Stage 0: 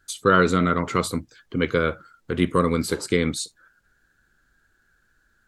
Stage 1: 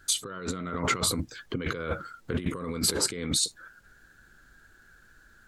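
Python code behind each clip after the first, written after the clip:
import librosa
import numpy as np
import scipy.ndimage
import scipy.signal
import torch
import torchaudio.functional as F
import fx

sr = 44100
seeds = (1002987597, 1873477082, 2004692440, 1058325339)

y = fx.over_compress(x, sr, threshold_db=-31.0, ratio=-1.0)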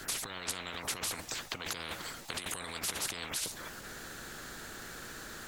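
y = fx.spectral_comp(x, sr, ratio=10.0)
y = y * 10.0 ** (-6.5 / 20.0)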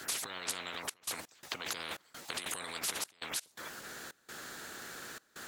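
y = fx.highpass(x, sr, hz=260.0, slope=6)
y = fx.step_gate(y, sr, bpm=84, pattern='xxxxx.x.xxx.', floor_db=-24.0, edge_ms=4.5)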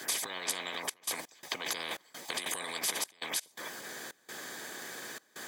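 y = fx.highpass(x, sr, hz=140.0, slope=6)
y = fx.notch_comb(y, sr, f0_hz=1400.0)
y = y * 10.0 ** (4.5 / 20.0)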